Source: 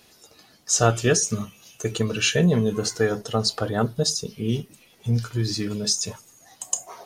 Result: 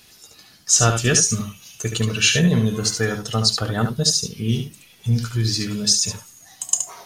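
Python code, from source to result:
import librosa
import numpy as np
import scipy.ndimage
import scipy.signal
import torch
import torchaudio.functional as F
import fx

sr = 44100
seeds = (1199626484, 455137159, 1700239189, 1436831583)

y = fx.peak_eq(x, sr, hz=510.0, db=-9.5, octaves=2.4)
y = y + 10.0 ** (-7.0 / 20.0) * np.pad(y, (int(72 * sr / 1000.0), 0))[:len(y)]
y = F.gain(torch.from_numpy(y), 6.0).numpy()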